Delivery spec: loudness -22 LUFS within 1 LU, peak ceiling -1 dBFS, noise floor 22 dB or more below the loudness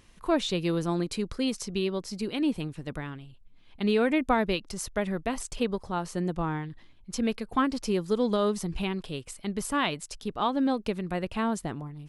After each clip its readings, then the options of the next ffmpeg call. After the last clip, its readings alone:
loudness -29.5 LUFS; peak level -12.5 dBFS; loudness target -22.0 LUFS
-> -af "volume=2.37"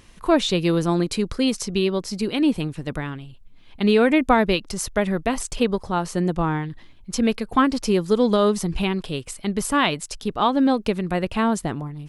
loudness -22.0 LUFS; peak level -5.0 dBFS; noise floor -47 dBFS

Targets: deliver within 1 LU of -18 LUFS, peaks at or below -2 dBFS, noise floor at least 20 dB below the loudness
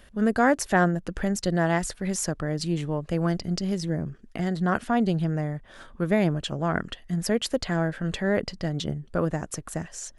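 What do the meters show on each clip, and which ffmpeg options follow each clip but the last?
loudness -27.0 LUFS; peak level -8.0 dBFS; loudness target -18.0 LUFS
-> -af "volume=2.82,alimiter=limit=0.794:level=0:latency=1"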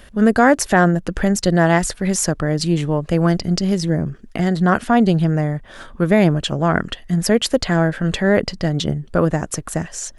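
loudness -18.0 LUFS; peak level -2.0 dBFS; noise floor -42 dBFS

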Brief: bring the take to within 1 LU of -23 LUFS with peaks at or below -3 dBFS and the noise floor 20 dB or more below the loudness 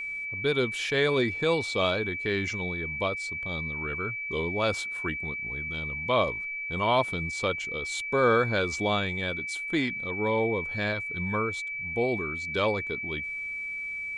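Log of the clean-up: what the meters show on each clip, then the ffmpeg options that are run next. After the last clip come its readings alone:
steady tone 2.3 kHz; tone level -32 dBFS; loudness -28.0 LUFS; peak level -11.0 dBFS; loudness target -23.0 LUFS
-> -af "bandreject=f=2300:w=30"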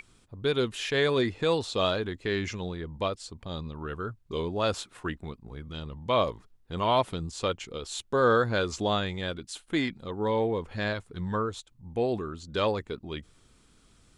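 steady tone not found; loudness -30.0 LUFS; peak level -11.0 dBFS; loudness target -23.0 LUFS
-> -af "volume=2.24"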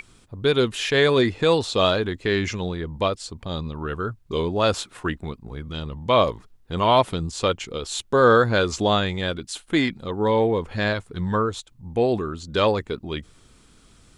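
loudness -23.0 LUFS; peak level -4.0 dBFS; noise floor -55 dBFS

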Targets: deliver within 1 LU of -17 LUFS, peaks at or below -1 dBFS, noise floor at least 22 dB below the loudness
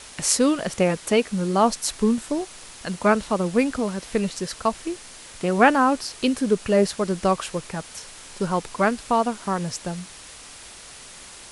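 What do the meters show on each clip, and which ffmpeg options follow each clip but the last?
noise floor -43 dBFS; noise floor target -45 dBFS; loudness -23.0 LUFS; peak level -2.5 dBFS; loudness target -17.0 LUFS
-> -af "afftdn=nr=6:nf=-43"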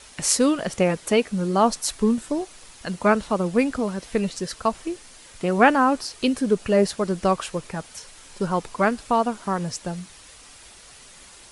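noise floor -47 dBFS; loudness -23.0 LUFS; peak level -2.5 dBFS; loudness target -17.0 LUFS
-> -af "volume=2,alimiter=limit=0.891:level=0:latency=1"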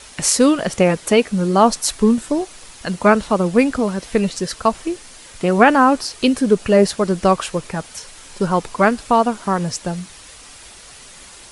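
loudness -17.5 LUFS; peak level -1.0 dBFS; noise floor -41 dBFS

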